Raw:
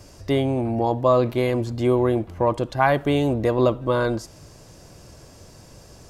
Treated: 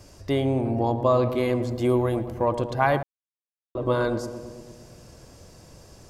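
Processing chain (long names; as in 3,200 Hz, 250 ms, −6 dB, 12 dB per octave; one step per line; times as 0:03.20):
0:01.70–0:02.46: high-shelf EQ 9,400 Hz +11 dB
feedback echo with a low-pass in the loop 112 ms, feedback 71%, low-pass 1,300 Hz, level −9.5 dB
0:03.03–0:03.75: silence
level −3 dB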